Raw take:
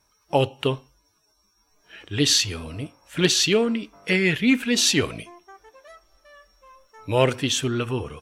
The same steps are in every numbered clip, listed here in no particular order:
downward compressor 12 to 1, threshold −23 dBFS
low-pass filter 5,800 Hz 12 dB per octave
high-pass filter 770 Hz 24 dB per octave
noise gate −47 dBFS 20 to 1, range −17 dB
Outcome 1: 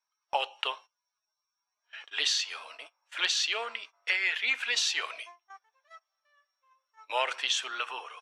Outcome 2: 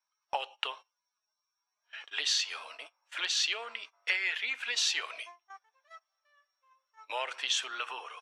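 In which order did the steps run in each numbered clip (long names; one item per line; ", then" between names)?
high-pass filter, then noise gate, then downward compressor, then low-pass filter
downward compressor, then high-pass filter, then noise gate, then low-pass filter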